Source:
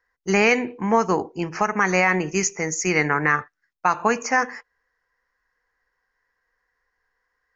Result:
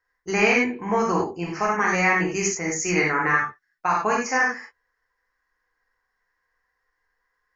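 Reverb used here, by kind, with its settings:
reverb whose tail is shaped and stops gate 120 ms flat, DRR −3 dB
level −5.5 dB

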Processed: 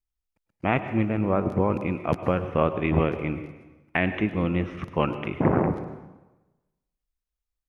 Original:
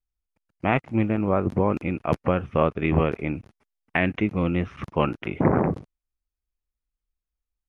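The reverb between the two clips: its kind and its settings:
dense smooth reverb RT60 1.1 s, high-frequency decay 0.9×, pre-delay 90 ms, DRR 10.5 dB
level −1.5 dB

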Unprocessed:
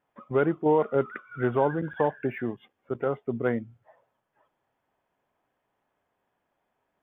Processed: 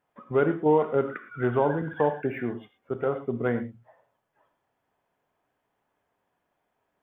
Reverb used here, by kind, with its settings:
reverb whose tail is shaped and stops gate 140 ms flat, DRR 8 dB

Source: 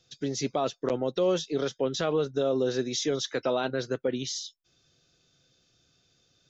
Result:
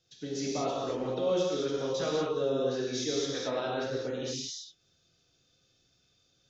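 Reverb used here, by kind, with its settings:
reverb whose tail is shaped and stops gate 260 ms flat, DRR −5 dB
level −9 dB

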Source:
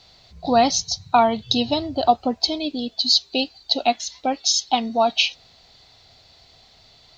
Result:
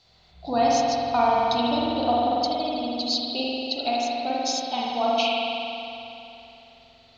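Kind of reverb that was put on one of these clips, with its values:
spring reverb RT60 3 s, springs 46 ms, chirp 35 ms, DRR −6 dB
level −9.5 dB

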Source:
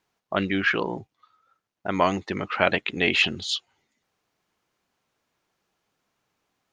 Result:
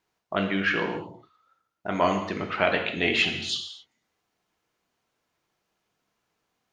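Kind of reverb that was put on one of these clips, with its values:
reverb whose tail is shaped and stops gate 290 ms falling, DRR 3 dB
level −3 dB

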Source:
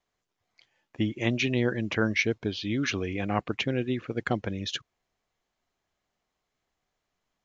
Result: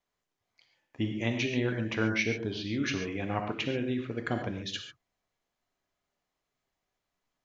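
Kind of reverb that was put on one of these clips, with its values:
reverb whose tail is shaped and stops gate 160 ms flat, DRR 3.5 dB
level −4.5 dB

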